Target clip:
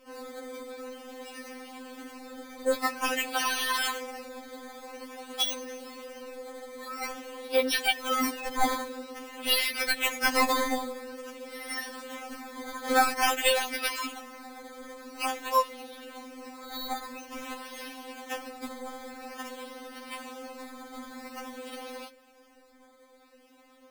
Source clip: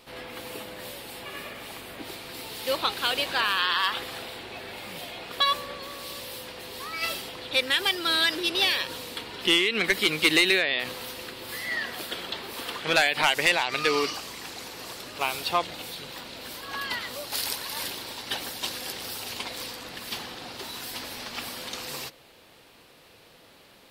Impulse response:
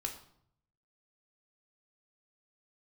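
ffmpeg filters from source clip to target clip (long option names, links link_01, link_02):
-filter_complex "[0:a]adynamicsmooth=sensitivity=1:basefreq=2300,acrusher=samples=11:mix=1:aa=0.000001:lfo=1:lforange=11:lforate=0.49,asplit=2[link_01][link_02];[1:a]atrim=start_sample=2205,afade=type=out:start_time=0.21:duration=0.01,atrim=end_sample=9702,atrim=end_sample=4410[link_03];[link_02][link_03]afir=irnorm=-1:irlink=0,volume=-17.5dB[link_04];[link_01][link_04]amix=inputs=2:normalize=0,afftfilt=real='re*3.46*eq(mod(b,12),0)':imag='im*3.46*eq(mod(b,12),0)':win_size=2048:overlap=0.75"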